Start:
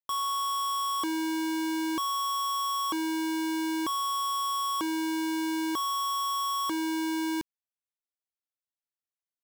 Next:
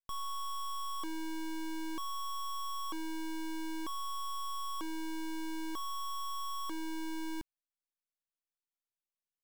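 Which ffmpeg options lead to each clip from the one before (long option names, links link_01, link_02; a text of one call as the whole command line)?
ffmpeg -i in.wav -af "aeval=exprs='max(val(0),0)':channel_layout=same,volume=-4.5dB" out.wav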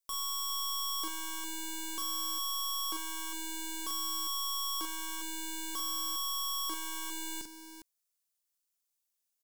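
ffmpeg -i in.wav -filter_complex "[0:a]bass=frequency=250:gain=-9,treble=frequency=4000:gain=12,asplit=2[link_01][link_02];[link_02]aecho=0:1:42|52|406:0.596|0.15|0.316[link_03];[link_01][link_03]amix=inputs=2:normalize=0" out.wav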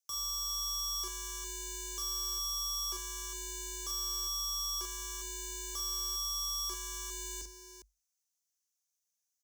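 ffmpeg -i in.wav -af "equalizer=frequency=6100:width_type=o:width=0.53:gain=13.5,afreqshift=48,volume=-6dB" out.wav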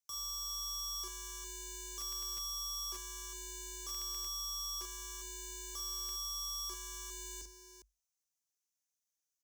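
ffmpeg -i in.wav -af "aeval=exprs='(mod(20*val(0)+1,2)-1)/20':channel_layout=same,volume=-4.5dB" out.wav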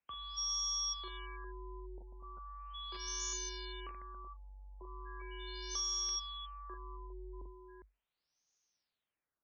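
ffmpeg -i in.wav -af "acompressor=threshold=-43dB:ratio=6,crystalizer=i=1:c=0,afftfilt=real='re*lt(b*sr/1024,960*pow(6900/960,0.5+0.5*sin(2*PI*0.38*pts/sr)))':imag='im*lt(b*sr/1024,960*pow(6900/960,0.5+0.5*sin(2*PI*0.38*pts/sr)))':win_size=1024:overlap=0.75,volume=7.5dB" out.wav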